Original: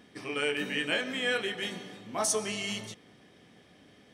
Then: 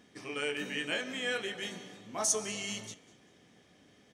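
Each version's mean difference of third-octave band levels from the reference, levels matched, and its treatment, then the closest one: 1.0 dB: peaking EQ 6.6 kHz +8.5 dB 0.39 oct; frequency-shifting echo 197 ms, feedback 37%, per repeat +69 Hz, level -21.5 dB; trim -4.5 dB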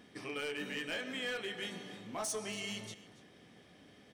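4.0 dB: compression 1.5:1, threshold -43 dBFS, peak gain reduction 7 dB; overload inside the chain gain 30.5 dB; delay 282 ms -18 dB; trim -2 dB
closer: first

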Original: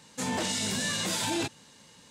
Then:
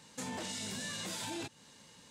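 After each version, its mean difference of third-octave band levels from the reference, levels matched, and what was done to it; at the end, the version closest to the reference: 2.5 dB: compression 2.5:1, threshold -38 dBFS, peak gain reduction 8 dB; trim -3 dB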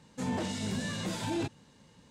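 5.0 dB: tilt EQ -2.5 dB/octave; trim -5 dB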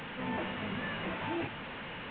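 15.5 dB: one-bit delta coder 16 kbps, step -31 dBFS; trim -4.5 dB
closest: first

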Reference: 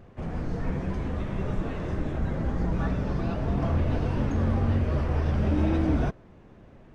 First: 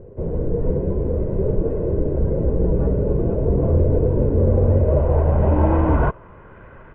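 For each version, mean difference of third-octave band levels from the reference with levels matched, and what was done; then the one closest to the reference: 8.0 dB: CVSD coder 16 kbps; treble shelf 2 kHz +8 dB; comb 2 ms, depth 44%; low-pass sweep 450 Hz -> 1.4 kHz, 4.37–6.56 s; trim +6.5 dB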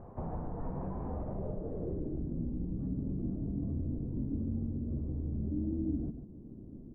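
11.0 dB: treble shelf 2.3 kHz -9 dB; compression 6:1, threshold -36 dBFS, peak gain reduction 15.5 dB; low-pass sweep 920 Hz -> 280 Hz, 1.04–2.35 s; on a send: delay 146 ms -8.5 dB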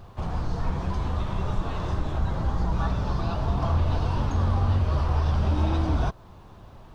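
3.5 dB: in parallel at +1 dB: compression, threshold -31 dBFS, peak gain reduction 11 dB; on the sum: peaking EQ 140 Hz -6 dB 0.64 oct; bit crusher 12-bit; ten-band graphic EQ 125 Hz +4 dB, 250 Hz -8 dB, 500 Hz -6 dB, 1 kHz +7 dB, 2 kHz -9 dB, 4 kHz +7 dB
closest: third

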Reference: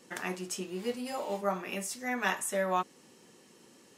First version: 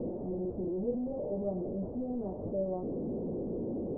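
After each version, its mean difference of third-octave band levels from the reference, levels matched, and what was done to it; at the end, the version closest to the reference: 20.0 dB: one-bit delta coder 16 kbps, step -26.5 dBFS; steep low-pass 600 Hz 36 dB/octave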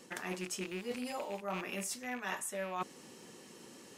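5.5 dB: rattle on loud lows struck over -47 dBFS, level -31 dBFS; reverse; compression 6:1, threshold -41 dBFS, peak gain reduction 16 dB; reverse; trim +4.5 dB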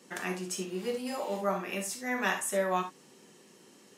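1.5 dB: high-pass 110 Hz; gated-style reverb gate 90 ms flat, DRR 5 dB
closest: third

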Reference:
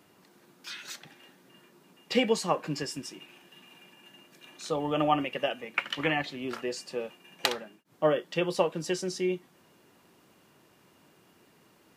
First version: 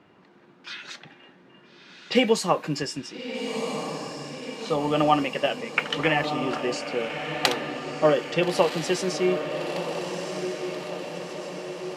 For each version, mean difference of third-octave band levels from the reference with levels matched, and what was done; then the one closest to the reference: 7.5 dB: level-controlled noise filter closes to 2.6 kHz, open at -26.5 dBFS; on a send: echo that smears into a reverb 1330 ms, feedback 61%, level -7 dB; on the sum: trim +5 dB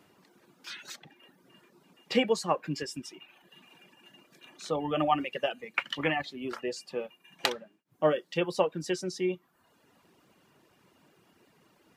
4.0 dB: reverb removal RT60 0.83 s; treble shelf 6.1 kHz -4.5 dB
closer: second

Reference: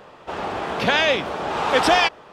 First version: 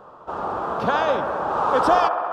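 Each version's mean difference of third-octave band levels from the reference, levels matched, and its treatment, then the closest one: 6.0 dB: resonant high shelf 1.6 kHz -8.5 dB, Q 3; on a send: feedback echo behind a band-pass 67 ms, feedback 85%, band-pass 890 Hz, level -9 dB; on the sum: trim -2.5 dB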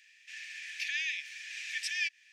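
21.0 dB: compression 6:1, threshold -22 dBFS, peak gain reduction 10 dB; rippled Chebyshev high-pass 1.7 kHz, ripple 9 dB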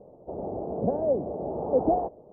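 15.0 dB: steep low-pass 670 Hz 36 dB/octave; trim -2 dB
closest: first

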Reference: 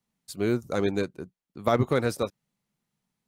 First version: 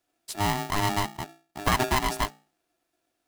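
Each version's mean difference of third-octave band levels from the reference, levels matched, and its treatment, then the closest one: 13.5 dB: hum notches 60/120/180/240/300/360 Hz; in parallel at +2 dB: compression, threshold -31 dBFS, peak gain reduction 12.5 dB; on the sum: polarity switched at an audio rate 510 Hz; trim -3 dB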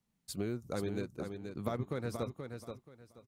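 5.5 dB: bass shelf 210 Hz +7 dB; compression 6:1, threshold -31 dBFS, peak gain reduction 15.5 dB; feedback delay 479 ms, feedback 23%, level -6.5 dB; trim -3 dB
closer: second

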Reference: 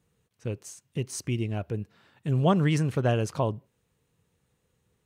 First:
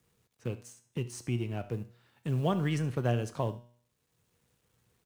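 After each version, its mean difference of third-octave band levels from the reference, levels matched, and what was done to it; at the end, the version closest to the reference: 3.5 dB: companding laws mixed up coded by A; feedback comb 120 Hz, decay 0.5 s, harmonics all, mix 60%; on a send: delay 72 ms -18.5 dB; on the sum: three bands compressed up and down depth 40%; trim +2 dB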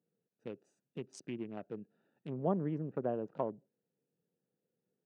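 6.5 dB: local Wiener filter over 41 samples; low-pass that closes with the level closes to 690 Hz, closed at -21.5 dBFS; high-pass 170 Hz 24 dB/octave; bass shelf 250 Hz -6.5 dB; trim -5 dB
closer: first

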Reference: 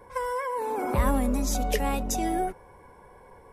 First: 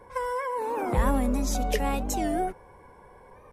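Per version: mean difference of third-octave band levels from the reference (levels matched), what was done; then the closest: 1.0 dB: treble shelf 9 kHz -5.5 dB; warped record 45 rpm, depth 160 cents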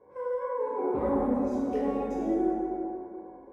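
10.0 dB: band-pass filter 390 Hz, Q 1.5; plate-style reverb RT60 2.6 s, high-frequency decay 0.5×, DRR -8 dB; trim -5 dB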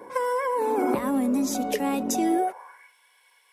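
6.0 dB: compression, threshold -29 dBFS, peak gain reduction 10.5 dB; high-pass sweep 270 Hz -> 3.1 kHz, 2.28–2.94 s; trim +5.5 dB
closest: first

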